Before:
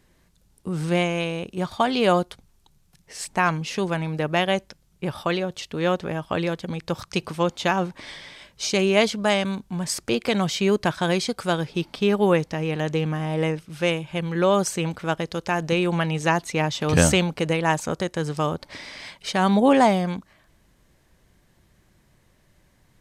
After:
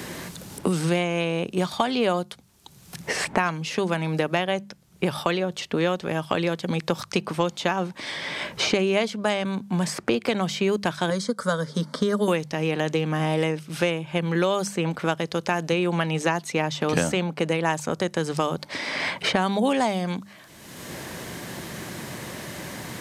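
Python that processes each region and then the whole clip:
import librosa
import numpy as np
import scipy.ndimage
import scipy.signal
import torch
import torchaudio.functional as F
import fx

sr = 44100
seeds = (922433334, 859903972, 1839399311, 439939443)

y = fx.chain(x, sr, fx.lowpass(hz=11000.0, slope=24),
    fx.fixed_phaser(hz=520.0, stages=8), at=(11.1, 12.28))
y = scipy.signal.sosfilt(scipy.signal.butter(2, 120.0, 'highpass', fs=sr, output='sos'), y)
y = fx.hum_notches(y, sr, base_hz=50, count=4)
y = fx.band_squash(y, sr, depth_pct=100)
y = y * librosa.db_to_amplitude(-1.5)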